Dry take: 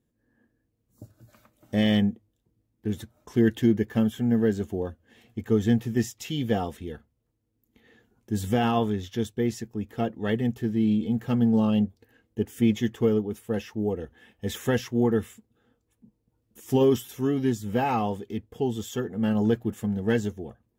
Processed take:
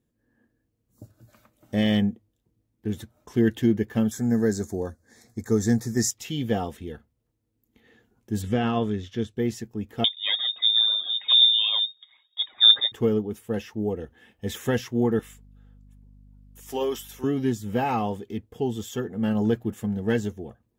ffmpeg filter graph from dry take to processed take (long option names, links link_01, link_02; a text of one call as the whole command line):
ffmpeg -i in.wav -filter_complex "[0:a]asettb=1/sr,asplit=3[link_01][link_02][link_03];[link_01]atrim=end=4.114[link_04];[link_02]atrim=start=4.11:end=6.11,asetpts=PTS-STARTPTS,afade=type=in:duration=0.004:curve=qsin,afade=type=out:start_time=1.996:duration=0.004:curve=qsin,asuperstop=centerf=2900:order=4:qfactor=1.3,equalizer=frequency=6800:width=0.51:gain=14[link_05];[link_03]atrim=start=6.106[link_06];[link_04][link_05]acrossfade=duration=0.004:curve1=hsin:curve2=qsin[link_07];[link_07][link_06]acrossfade=duration=0.004:curve1=qsin:curve2=hsin,asettb=1/sr,asplit=3[link_08][link_09][link_10];[link_08]atrim=end=8.424[link_11];[link_09]atrim=start=8.42:end=9.36,asetpts=PTS-STARTPTS,afade=type=in:duration=0.004:curve=qsin,afade=type=out:start_time=0.936:duration=0.004:curve=qsin,equalizer=frequency=850:width_type=o:width=0.4:gain=-7,acrossover=split=3700[link_12][link_13];[link_13]acompressor=threshold=-50dB:ratio=4:attack=1:release=60[link_14];[link_12][link_14]amix=inputs=2:normalize=0,lowpass=8700[link_15];[link_10]atrim=start=9.356[link_16];[link_11][link_15]acrossfade=duration=0.004:curve1=hsin:curve2=qsin[link_17];[link_17][link_16]acrossfade=duration=0.004:curve1=qsin:curve2=hsin,asettb=1/sr,asplit=3[link_18][link_19][link_20];[link_18]atrim=end=10.044[link_21];[link_19]atrim=start=10.04:end=12.92,asetpts=PTS-STARTPTS,afade=type=in:duration=0.004:curve=qsin,afade=type=out:start_time=2.876:duration=0.004:curve=qsin,aphaser=in_gain=1:out_gain=1:delay=2.1:decay=0.6:speed=1.5:type=triangular,lowpass=frequency=3200:width_type=q:width=0.5098,lowpass=frequency=3200:width_type=q:width=0.6013,lowpass=frequency=3200:width_type=q:width=0.9,lowpass=frequency=3200:width_type=q:width=2.563,afreqshift=-3800[link_22];[link_20]atrim=start=12.916[link_23];[link_21][link_22]acrossfade=duration=0.004:curve1=hsin:curve2=qsin[link_24];[link_24][link_23]acrossfade=duration=0.004:curve1=qsin:curve2=hsin,asettb=1/sr,asplit=3[link_25][link_26][link_27];[link_25]atrim=end=15.194[link_28];[link_26]atrim=start=15.19:end=17.24,asetpts=PTS-STARTPTS,afade=type=in:duration=0.004:curve=qsin,afade=type=out:start_time=2.046:duration=0.004:curve=qsin,highpass=540,aeval=exprs='val(0)+0.00316*(sin(2*PI*50*n/s)+sin(2*PI*2*50*n/s)/2+sin(2*PI*3*50*n/s)/3+sin(2*PI*4*50*n/s)/4+sin(2*PI*5*50*n/s)/5)':channel_layout=same[link_29];[link_27]atrim=start=17.236[link_30];[link_28][link_29]acrossfade=duration=0.004:curve1=hsin:curve2=qsin[link_31];[link_31][link_30]acrossfade=duration=0.004:curve1=qsin:curve2=hsin" out.wav